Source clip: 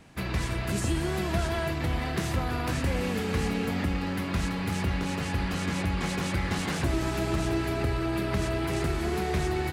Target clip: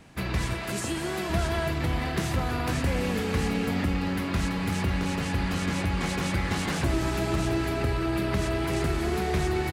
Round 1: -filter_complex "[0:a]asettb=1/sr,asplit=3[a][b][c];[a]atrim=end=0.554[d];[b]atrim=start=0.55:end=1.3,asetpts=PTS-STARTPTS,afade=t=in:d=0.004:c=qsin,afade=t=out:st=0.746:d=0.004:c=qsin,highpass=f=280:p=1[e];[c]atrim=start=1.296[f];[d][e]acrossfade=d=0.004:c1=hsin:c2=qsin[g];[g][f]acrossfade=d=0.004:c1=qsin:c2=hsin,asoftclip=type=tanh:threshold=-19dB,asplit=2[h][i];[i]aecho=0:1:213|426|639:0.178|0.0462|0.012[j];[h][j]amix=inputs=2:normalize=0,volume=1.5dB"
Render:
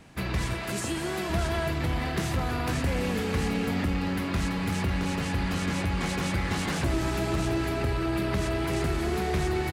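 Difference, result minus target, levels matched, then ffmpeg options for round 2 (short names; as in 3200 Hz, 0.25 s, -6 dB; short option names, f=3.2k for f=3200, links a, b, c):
soft clip: distortion +14 dB
-filter_complex "[0:a]asettb=1/sr,asplit=3[a][b][c];[a]atrim=end=0.554[d];[b]atrim=start=0.55:end=1.3,asetpts=PTS-STARTPTS,afade=t=in:d=0.004:c=qsin,afade=t=out:st=0.746:d=0.004:c=qsin,highpass=f=280:p=1[e];[c]atrim=start=1.296[f];[d][e]acrossfade=d=0.004:c1=hsin:c2=qsin[g];[g][f]acrossfade=d=0.004:c1=qsin:c2=hsin,asoftclip=type=tanh:threshold=-11dB,asplit=2[h][i];[i]aecho=0:1:213|426|639:0.178|0.0462|0.012[j];[h][j]amix=inputs=2:normalize=0,volume=1.5dB"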